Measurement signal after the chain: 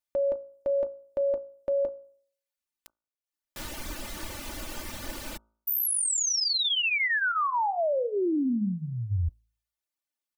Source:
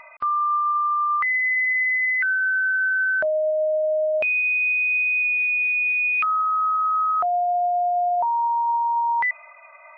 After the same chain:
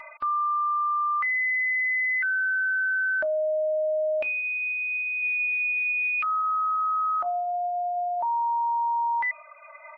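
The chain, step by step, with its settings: de-hum 55.42 Hz, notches 27; reverb removal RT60 0.62 s; comb 3.4 ms, depth 71%; limiter -22 dBFS

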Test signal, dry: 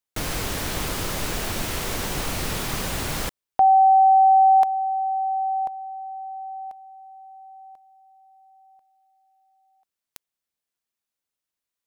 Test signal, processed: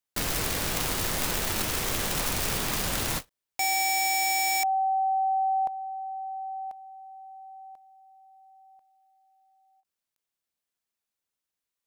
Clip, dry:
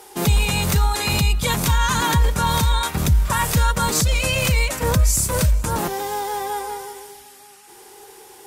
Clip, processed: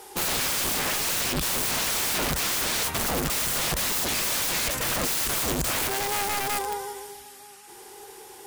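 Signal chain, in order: wrapped overs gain 20.5 dB; ending taper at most 460 dB/s; gain -1 dB

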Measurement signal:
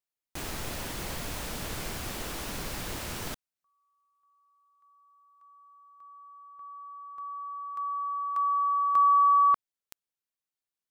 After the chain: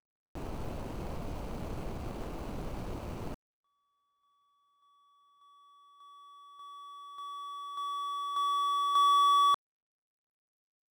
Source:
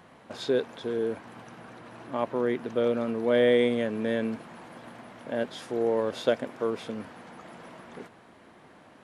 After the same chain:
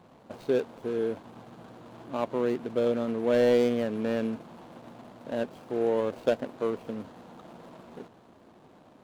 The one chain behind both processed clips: median filter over 25 samples

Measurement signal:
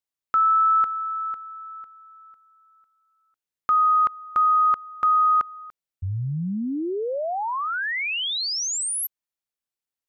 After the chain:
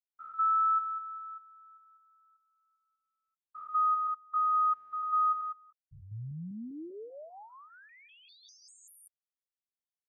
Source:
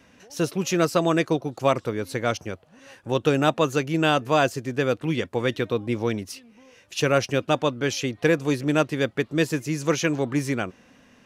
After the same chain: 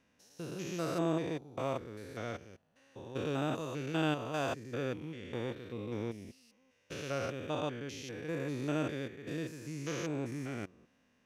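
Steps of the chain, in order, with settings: stepped spectrum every 0.2 s; upward expander 1.5:1, over -37 dBFS; gain -8 dB

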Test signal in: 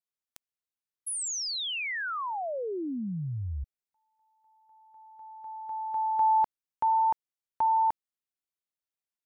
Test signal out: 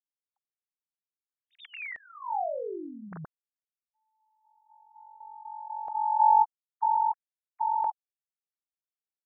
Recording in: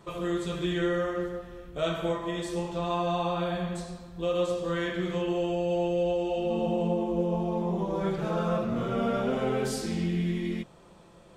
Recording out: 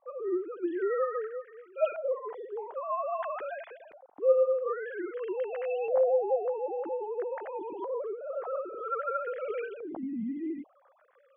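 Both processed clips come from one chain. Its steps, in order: sine-wave speech; LFO low-pass saw up 0.51 Hz 680–2500 Hz; gain -5 dB

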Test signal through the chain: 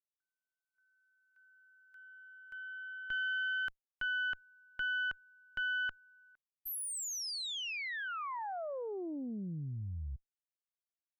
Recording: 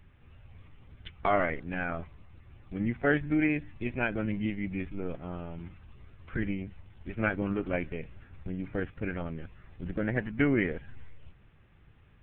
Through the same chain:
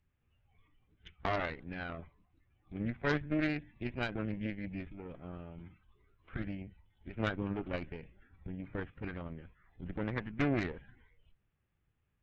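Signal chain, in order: spectral noise reduction 13 dB; added harmonics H 4 -10 dB, 5 -31 dB, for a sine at -12 dBFS; Doppler distortion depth 0.17 ms; gain -8 dB

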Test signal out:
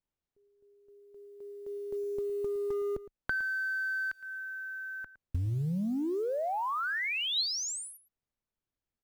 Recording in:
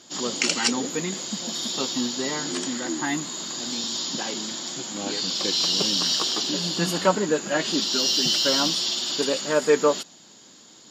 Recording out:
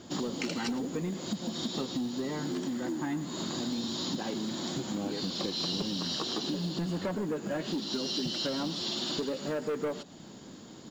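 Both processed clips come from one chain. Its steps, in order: tilt -3.5 dB/oct; soft clip -15.5 dBFS; LPF 8400 Hz 24 dB/oct; compressor 8:1, threshold -33 dBFS; short-mantissa float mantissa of 4-bit; dynamic EQ 4000 Hz, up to +6 dB, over -58 dBFS, Q 7.3; echo 0.112 s -16.5 dB; gain +2 dB

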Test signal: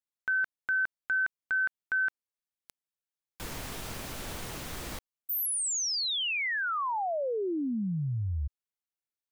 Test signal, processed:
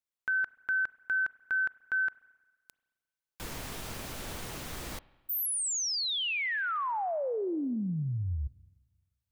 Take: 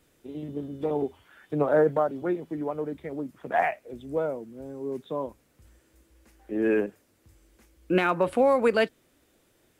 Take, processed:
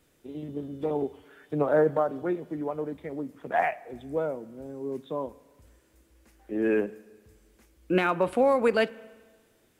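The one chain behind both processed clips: spring tank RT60 1.4 s, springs 32/44 ms, chirp 35 ms, DRR 19.5 dB; gain -1 dB

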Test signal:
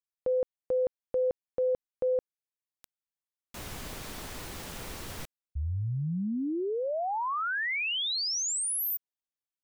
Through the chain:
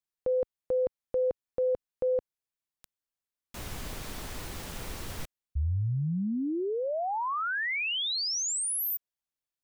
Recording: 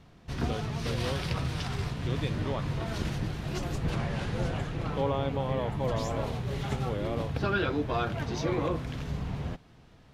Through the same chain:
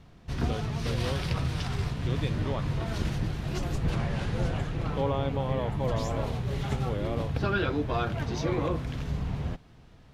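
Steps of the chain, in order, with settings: low shelf 99 Hz +5.5 dB

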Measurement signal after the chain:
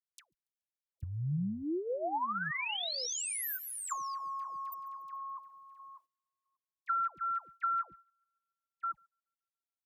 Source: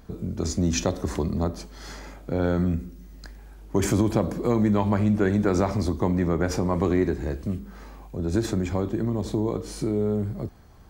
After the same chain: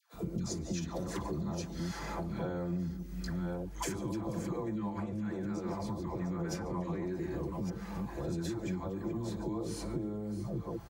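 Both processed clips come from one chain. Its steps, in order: reverse delay 0.592 s, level -10.5 dB; limiter -19.5 dBFS; HPF 51 Hz; vocal rider within 3 dB 2 s; dispersion lows, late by 0.146 s, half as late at 780 Hz; on a send: thin delay 0.142 s, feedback 56%, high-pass 2200 Hz, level -24 dB; on the sum: compressor 6:1, threshold -36 dBFS; dynamic EQ 930 Hz, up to +4 dB, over -56 dBFS, Q 2.2; gate -58 dBFS, range -15 dB; low shelf 160 Hz +3 dB; comb 5.9 ms, depth 52%

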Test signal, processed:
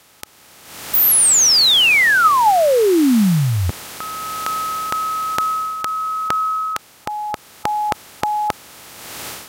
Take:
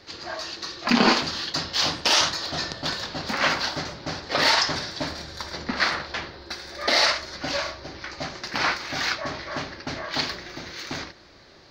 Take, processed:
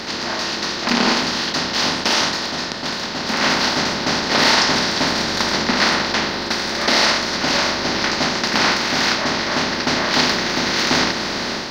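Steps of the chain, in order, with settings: per-bin compression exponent 0.4; AGC gain up to 15.5 dB; gain -2.5 dB

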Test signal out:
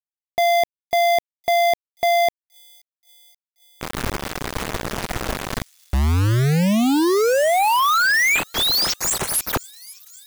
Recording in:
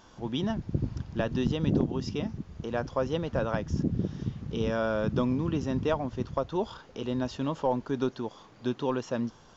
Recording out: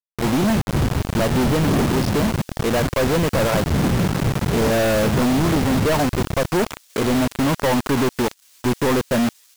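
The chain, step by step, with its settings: median filter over 15 samples; companded quantiser 2-bit; thin delay 0.53 s, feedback 74%, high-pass 5300 Hz, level -19.5 dB; gain +8.5 dB

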